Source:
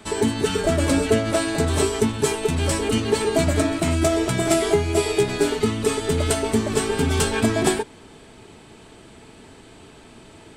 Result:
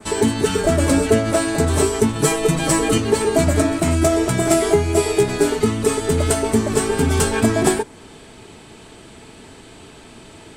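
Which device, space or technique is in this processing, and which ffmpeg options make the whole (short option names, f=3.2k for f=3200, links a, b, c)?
exciter from parts: -filter_complex "[0:a]adynamicequalizer=threshold=0.00631:dfrequency=3400:dqfactor=1:tfrequency=3400:tqfactor=1:attack=5:release=100:ratio=0.375:range=3:mode=cutabove:tftype=bell,asplit=2[a][b];[b]highpass=f=3.4k:p=1,asoftclip=type=tanh:threshold=-31.5dB,volume=-8dB[c];[a][c]amix=inputs=2:normalize=0,asettb=1/sr,asplit=3[d][e][f];[d]atrim=end=2.154[g];[e]atrim=start=2.15:end=2.98,asetpts=PTS-STARTPTS,afade=t=in:d=0.004:c=qsin,afade=t=out:st=0.826:d=0.004:c=qsin,aecho=1:1:6.2:1,atrim=end_sample=36603[h];[f]atrim=start=2.976[i];[g][h]acrossfade=d=0.004:c1=hsin:c2=qsin[j];[j][i]acrossfade=d=0.004:c1=qsin:c2=hsin,volume=3.5dB"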